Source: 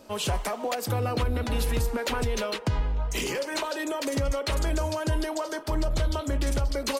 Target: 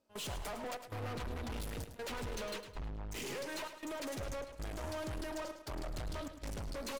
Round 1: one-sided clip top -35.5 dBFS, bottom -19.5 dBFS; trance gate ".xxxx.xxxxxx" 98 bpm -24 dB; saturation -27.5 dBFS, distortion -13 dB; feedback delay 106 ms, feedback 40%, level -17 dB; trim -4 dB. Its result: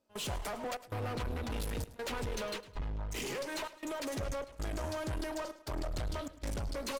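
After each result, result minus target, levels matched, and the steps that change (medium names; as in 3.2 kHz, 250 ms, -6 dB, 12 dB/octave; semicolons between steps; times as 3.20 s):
echo-to-direct -6.5 dB; saturation: distortion -6 dB
change: feedback delay 106 ms, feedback 40%, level -10.5 dB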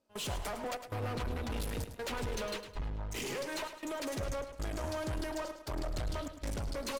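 saturation: distortion -6 dB
change: saturation -35 dBFS, distortion -8 dB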